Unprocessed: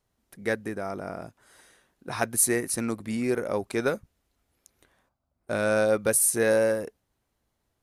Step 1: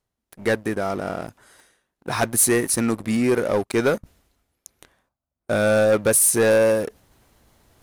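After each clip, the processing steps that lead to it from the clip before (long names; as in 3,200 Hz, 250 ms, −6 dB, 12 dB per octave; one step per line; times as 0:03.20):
leveller curve on the samples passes 3
reversed playback
upward compression, threshold −32 dBFS
reversed playback
level −3 dB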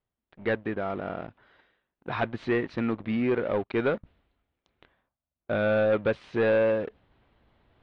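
Butterworth low-pass 3,600 Hz 36 dB per octave
level −6 dB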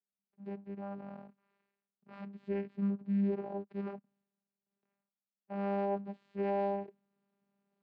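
harmonic and percussive parts rebalanced percussive −17 dB
channel vocoder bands 8, saw 199 Hz
level −7 dB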